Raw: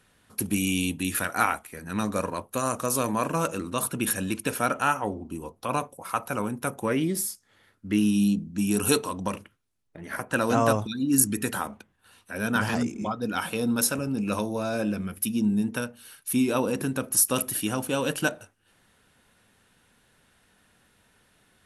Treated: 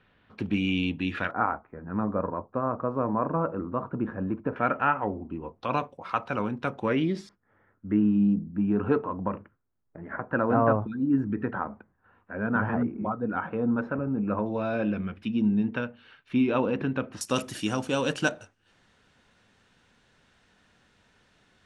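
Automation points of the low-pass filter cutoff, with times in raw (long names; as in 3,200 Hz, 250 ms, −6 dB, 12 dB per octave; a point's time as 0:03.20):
low-pass filter 24 dB per octave
3,300 Hz
from 0:01.31 1,300 Hz
from 0:04.56 2,300 Hz
from 0:05.61 4,100 Hz
from 0:07.29 1,600 Hz
from 0:14.46 3,100 Hz
from 0:17.21 6,900 Hz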